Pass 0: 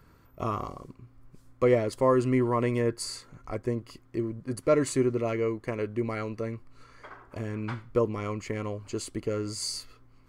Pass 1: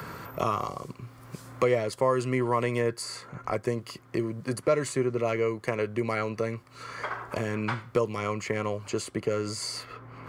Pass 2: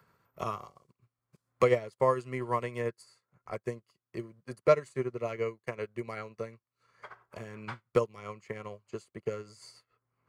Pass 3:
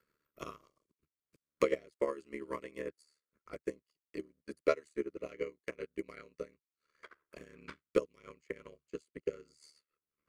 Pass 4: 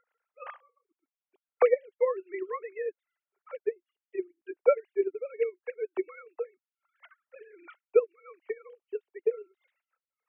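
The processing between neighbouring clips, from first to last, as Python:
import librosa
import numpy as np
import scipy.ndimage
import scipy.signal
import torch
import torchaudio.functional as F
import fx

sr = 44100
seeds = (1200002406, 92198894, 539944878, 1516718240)

y1 = scipy.signal.sosfilt(scipy.signal.butter(2, 130.0, 'highpass', fs=sr, output='sos'), x)
y1 = fx.peak_eq(y1, sr, hz=280.0, db=-8.5, octaves=0.87)
y1 = fx.band_squash(y1, sr, depth_pct=70)
y1 = F.gain(torch.from_numpy(y1), 4.0).numpy()
y2 = fx.peak_eq(y1, sr, hz=290.0, db=-10.5, octaves=0.22)
y2 = fx.upward_expand(y2, sr, threshold_db=-48.0, expansion=2.5)
y2 = F.gain(torch.from_numpy(y2), 3.0).numpy()
y3 = fx.transient(y2, sr, attack_db=8, sustain_db=-3)
y3 = fx.fixed_phaser(y3, sr, hz=330.0, stages=4)
y3 = y3 * np.sin(2.0 * np.pi * 37.0 * np.arange(len(y3)) / sr)
y3 = F.gain(torch.from_numpy(y3), -5.0).numpy()
y4 = fx.sine_speech(y3, sr)
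y4 = F.gain(torch.from_numpy(y4), 8.0).numpy()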